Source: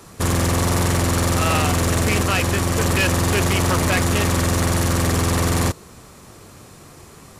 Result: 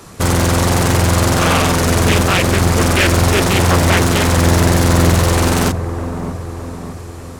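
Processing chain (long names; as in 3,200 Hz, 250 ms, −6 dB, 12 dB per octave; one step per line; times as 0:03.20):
delay with a low-pass on its return 608 ms, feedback 54%, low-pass 1,100 Hz, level −8.5 dB
highs frequency-modulated by the lows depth 0.83 ms
level +5.5 dB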